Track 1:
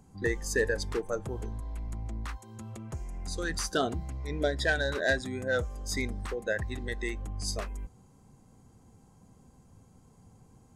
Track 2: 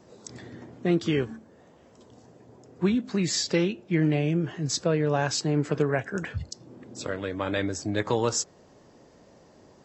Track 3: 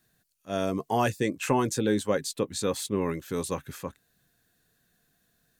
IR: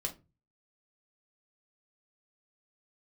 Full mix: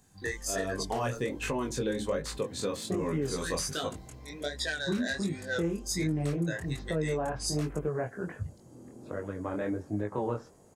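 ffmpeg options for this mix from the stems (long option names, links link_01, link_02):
-filter_complex "[0:a]crystalizer=i=6.5:c=0,volume=-5dB[link_01];[1:a]lowpass=1300,adelay=2050,volume=-1dB[link_02];[2:a]acontrast=77,volume=-7dB,asplit=2[link_03][link_04];[link_04]volume=-6.5dB[link_05];[3:a]atrim=start_sample=2205[link_06];[link_05][link_06]afir=irnorm=-1:irlink=0[link_07];[link_01][link_02][link_03][link_07]amix=inputs=4:normalize=0,highshelf=frequency=8300:gain=-9.5,flanger=delay=19:depth=5.9:speed=1.3,alimiter=limit=-21.5dB:level=0:latency=1:release=226"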